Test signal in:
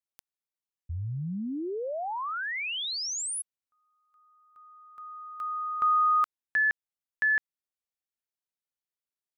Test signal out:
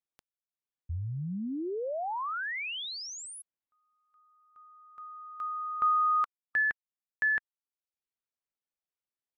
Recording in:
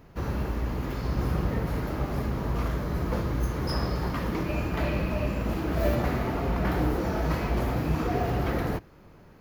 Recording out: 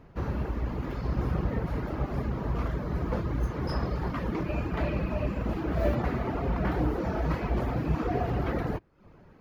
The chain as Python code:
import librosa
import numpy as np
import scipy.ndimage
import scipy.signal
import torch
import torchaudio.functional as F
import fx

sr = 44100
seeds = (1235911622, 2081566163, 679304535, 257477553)

y = fx.dereverb_blind(x, sr, rt60_s=0.56)
y = fx.lowpass(y, sr, hz=2400.0, slope=6)